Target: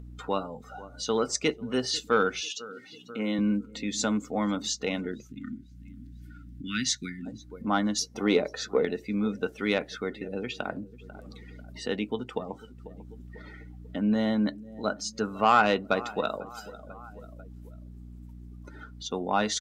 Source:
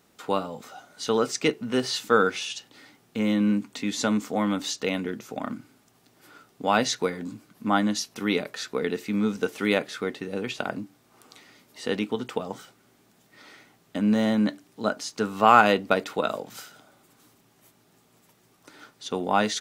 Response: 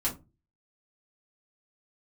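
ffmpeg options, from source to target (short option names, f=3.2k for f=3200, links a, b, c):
-filter_complex "[0:a]aeval=exprs='val(0)+0.00355*(sin(2*PI*60*n/s)+sin(2*PI*2*60*n/s)/2+sin(2*PI*3*60*n/s)/3+sin(2*PI*4*60*n/s)/4+sin(2*PI*5*60*n/s)/5)':c=same,asettb=1/sr,asplit=3[a][b][c];[a]atrim=end=2.414[d];[b]atrim=start=2.41:end=3.39,asetpts=PTS-STARTPTS,afade=t=in:d=0.004:c=qsin,afade=t=out:st=0.976:d=0.004:c=qsin,highpass=220[e];[c]atrim=start=3.386[f];[d][e]acrossfade=d=0.004:c1=hsin:c2=qsin[g];[g][f]acrossfade=d=0.004:c1=qsin:c2=hsin,asettb=1/sr,asplit=3[h][i][j];[h]atrim=end=8.004[k];[i]atrim=start=8:end=8.85,asetpts=PTS-STARTPTS,afade=t=in:d=0.004:c=qsin,afade=t=out:st=0.846:d=0.004:c=qsin,equalizer=f=520:w=0.75:g=8.5[l];[j]atrim=start=8.846[m];[k][l]acrossfade=d=0.004:c1=hsin:c2=qsin[n];[n][m]acrossfade=d=0.004:c1=qsin:c2=hsin,aecho=1:1:494|988|1482:0.1|0.046|0.0212,acompressor=mode=upward:threshold=-31dB:ratio=2.5,asplit=3[o][p][q];[o]afade=t=out:st=5.27:d=0.02[r];[p]asuperstop=centerf=690:order=8:qfactor=0.55,afade=t=in:st=5.27:d=0.02,afade=t=out:st=7.25:d=0.02[s];[q]afade=t=in:st=7.25:d=0.02[t];[r][s][t]amix=inputs=3:normalize=0,afftdn=nr=20:nf=-40,asoftclip=type=tanh:threshold=-6dB,adynamicequalizer=threshold=0.00708:dfrequency=4500:dqfactor=0.7:tfrequency=4500:tqfactor=0.7:attack=5:release=100:ratio=0.375:range=3:mode=boostabove:tftype=highshelf,volume=-3dB"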